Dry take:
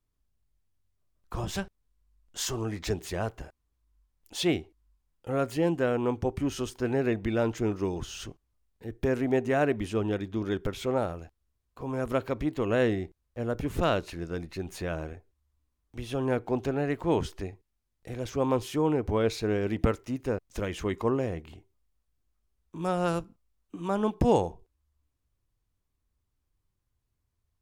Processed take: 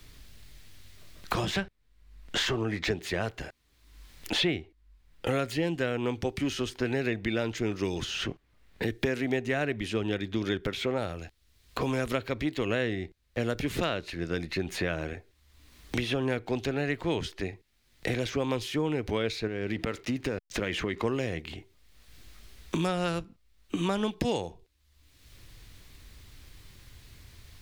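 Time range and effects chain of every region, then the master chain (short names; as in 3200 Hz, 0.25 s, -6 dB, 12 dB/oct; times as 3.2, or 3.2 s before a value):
19.47–21.03 compressor 4:1, threshold -32 dBFS + backlash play -58.5 dBFS
whole clip: graphic EQ 1000/2000/4000 Hz -4/+7/+8 dB; three-band squash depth 100%; gain -2 dB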